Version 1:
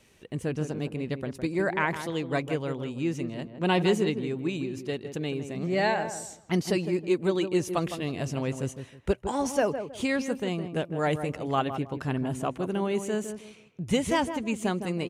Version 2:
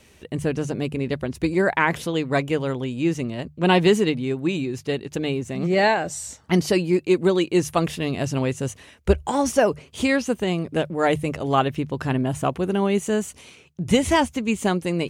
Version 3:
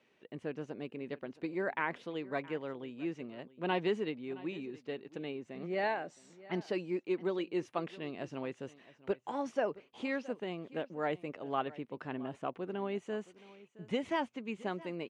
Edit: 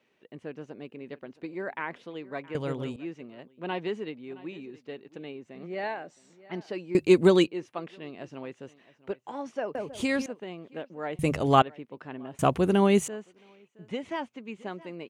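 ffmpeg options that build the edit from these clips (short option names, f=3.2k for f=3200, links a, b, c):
-filter_complex "[0:a]asplit=2[a][b];[1:a]asplit=3[c][d][e];[2:a]asplit=6[f][g][h][i][j][k];[f]atrim=end=2.552[l];[a]atrim=start=2.548:end=2.962[m];[g]atrim=start=2.958:end=6.952[n];[c]atrim=start=6.948:end=7.472[o];[h]atrim=start=7.468:end=9.752[p];[b]atrim=start=9.748:end=10.262[q];[i]atrim=start=10.258:end=11.192[r];[d]atrim=start=11.188:end=11.622[s];[j]atrim=start=11.618:end=12.392[t];[e]atrim=start=12.388:end=13.082[u];[k]atrim=start=13.078[v];[l][m]acrossfade=d=0.004:c1=hsin:c2=hsin[w];[w][n]acrossfade=d=0.004:c1=hsin:c2=hsin[x];[x][o]acrossfade=d=0.004:c1=hsin:c2=hsin[y];[y][p]acrossfade=d=0.004:c1=hsin:c2=hsin[z];[z][q]acrossfade=d=0.004:c1=hsin:c2=hsin[aa];[aa][r]acrossfade=d=0.004:c1=hsin:c2=hsin[ab];[ab][s]acrossfade=d=0.004:c1=hsin:c2=hsin[ac];[ac][t]acrossfade=d=0.004:c1=hsin:c2=hsin[ad];[ad][u]acrossfade=d=0.004:c1=hsin:c2=hsin[ae];[ae][v]acrossfade=d=0.004:c1=hsin:c2=hsin"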